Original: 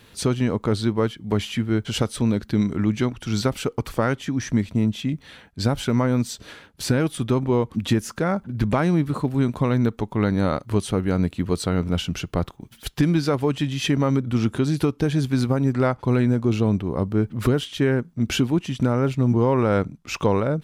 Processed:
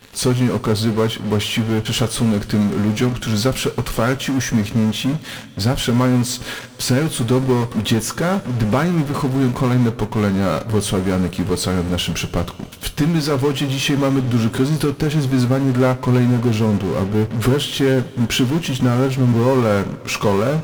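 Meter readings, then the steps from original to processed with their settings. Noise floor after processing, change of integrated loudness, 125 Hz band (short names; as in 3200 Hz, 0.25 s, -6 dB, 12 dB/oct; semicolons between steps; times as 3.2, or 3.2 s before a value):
-35 dBFS, +4.5 dB, +4.5 dB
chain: in parallel at -12 dB: fuzz box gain 45 dB, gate -45 dBFS; on the sum: two-slope reverb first 0.2 s, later 3.9 s, from -22 dB, DRR 8.5 dB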